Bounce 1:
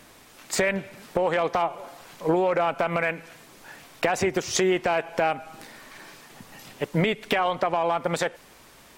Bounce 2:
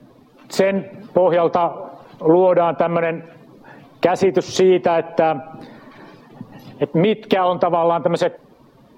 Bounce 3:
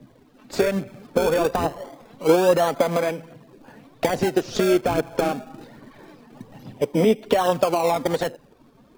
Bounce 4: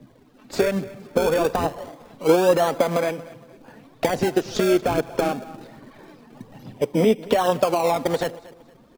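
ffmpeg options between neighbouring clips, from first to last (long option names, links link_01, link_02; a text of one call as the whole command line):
ffmpeg -i in.wav -filter_complex "[0:a]afftdn=noise_reduction=13:noise_floor=-48,equalizer=frequency=125:width_type=o:width=1:gain=12,equalizer=frequency=250:width_type=o:width=1:gain=10,equalizer=frequency=500:width_type=o:width=1:gain=7,equalizer=frequency=1000:width_type=o:width=1:gain=5,equalizer=frequency=2000:width_type=o:width=1:gain=-4,equalizer=frequency=4000:width_type=o:width=1:gain=6,equalizer=frequency=8000:width_type=o:width=1:gain=-7,acrossover=split=200|1600|7500[link_01][link_02][link_03][link_04];[link_01]acompressor=threshold=-32dB:ratio=6[link_05];[link_05][link_02][link_03][link_04]amix=inputs=4:normalize=0" out.wav
ffmpeg -i in.wav -filter_complex "[0:a]asplit=2[link_01][link_02];[link_02]acrusher=samples=31:mix=1:aa=0.000001:lfo=1:lforange=31:lforate=0.25,volume=-5dB[link_03];[link_01][link_03]amix=inputs=2:normalize=0,aphaser=in_gain=1:out_gain=1:delay=4.8:decay=0.42:speed=1.2:type=triangular,volume=-7.5dB" out.wav
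ffmpeg -i in.wav -af "aecho=1:1:232|464|696:0.1|0.034|0.0116" out.wav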